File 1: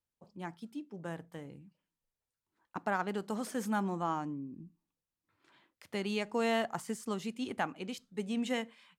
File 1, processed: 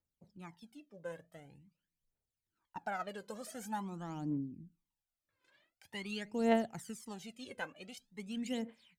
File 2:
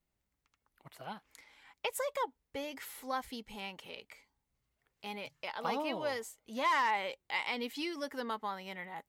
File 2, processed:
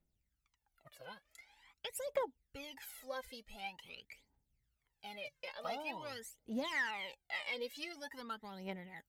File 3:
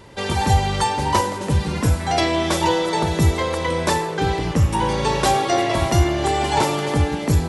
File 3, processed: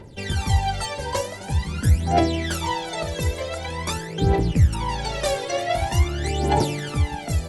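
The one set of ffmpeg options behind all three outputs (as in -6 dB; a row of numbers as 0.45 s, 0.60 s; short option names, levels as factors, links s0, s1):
-af "equalizer=f=1100:w=6.3:g=-9.5,aphaser=in_gain=1:out_gain=1:delay=2:decay=0.78:speed=0.46:type=triangular,volume=0.398"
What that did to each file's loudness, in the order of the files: -3.5 LU, -6.0 LU, -3.5 LU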